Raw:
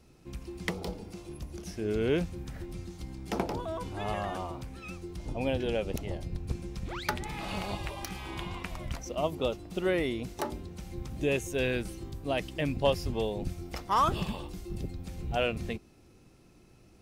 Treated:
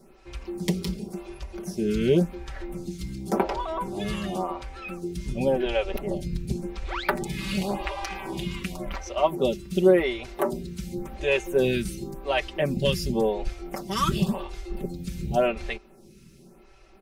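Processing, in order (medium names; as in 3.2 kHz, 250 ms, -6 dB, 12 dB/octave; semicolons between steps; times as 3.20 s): comb 5.2 ms, depth 79%; lamp-driven phase shifter 0.91 Hz; trim +7.5 dB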